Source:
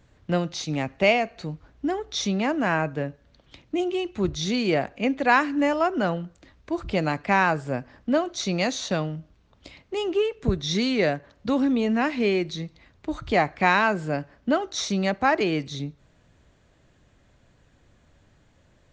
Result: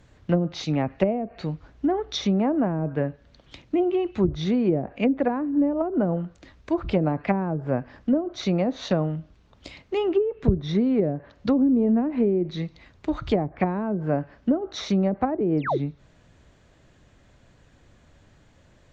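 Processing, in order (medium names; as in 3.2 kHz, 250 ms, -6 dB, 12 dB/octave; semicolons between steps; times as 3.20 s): painted sound fall, 15.57–15.78 s, 290–6100 Hz -26 dBFS; low-pass that closes with the level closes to 370 Hz, closed at -18.5 dBFS; trim +3.5 dB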